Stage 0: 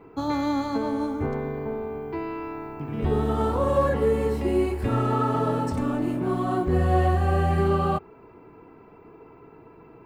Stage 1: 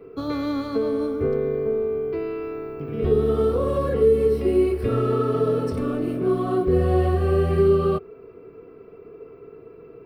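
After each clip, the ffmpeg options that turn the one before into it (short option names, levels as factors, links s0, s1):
-filter_complex "[0:a]superequalizer=7b=2.82:9b=0.282:11b=0.708:15b=0.316,acrossover=split=450|3000[s0][s1][s2];[s1]acompressor=threshold=0.0562:ratio=6[s3];[s0][s3][s2]amix=inputs=3:normalize=0"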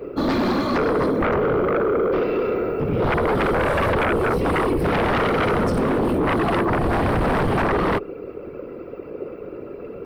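-af "afftfilt=real='hypot(re,im)*cos(2*PI*random(0))':imag='hypot(re,im)*sin(2*PI*random(1))':win_size=512:overlap=0.75,alimiter=limit=0.15:level=0:latency=1:release=287,aeval=exprs='0.15*sin(PI/2*3.98*val(0)/0.15)':c=same"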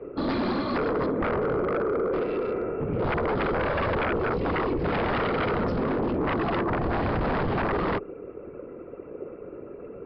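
-filter_complex "[0:a]acrossover=split=210|2700[s0][s1][s2];[s2]acrusher=bits=6:mix=0:aa=0.000001[s3];[s0][s1][s3]amix=inputs=3:normalize=0,aresample=11025,aresample=44100,volume=0.501"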